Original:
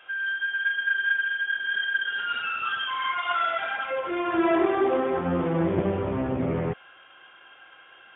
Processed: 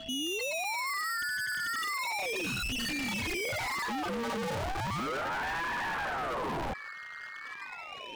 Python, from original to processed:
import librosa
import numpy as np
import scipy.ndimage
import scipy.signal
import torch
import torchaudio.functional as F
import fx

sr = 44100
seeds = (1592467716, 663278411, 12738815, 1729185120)

y = fx.envelope_sharpen(x, sr, power=3.0)
y = fx.highpass(y, sr, hz=90.0, slope=6)
y = fx.leveller(y, sr, passes=2)
y = y + 10.0 ** (-44.0 / 20.0) * np.sin(2.0 * np.pi * 2000.0 * np.arange(len(y)) / sr)
y = np.clip(y, -10.0 ** (-34.0 / 20.0), 10.0 ** (-34.0 / 20.0))
y = fx.ring_lfo(y, sr, carrier_hz=730.0, swing_pct=85, hz=0.35)
y = F.gain(torch.from_numpy(y), 4.0).numpy()